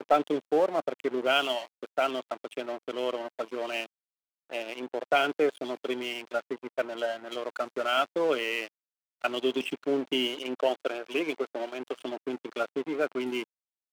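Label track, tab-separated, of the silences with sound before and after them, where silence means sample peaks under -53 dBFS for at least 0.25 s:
3.860000	4.500000	silence
8.680000	9.210000	silence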